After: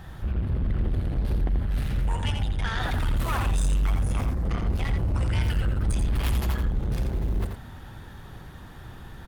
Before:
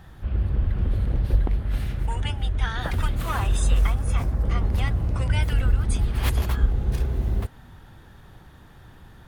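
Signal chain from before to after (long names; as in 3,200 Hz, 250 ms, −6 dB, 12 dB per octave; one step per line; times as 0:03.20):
in parallel at +0.5 dB: brickwall limiter −19.5 dBFS, peak gain reduction 11 dB
on the sum: soft clipping −20.5 dBFS, distortion −10 dB
single-tap delay 85 ms −6 dB
level −2 dB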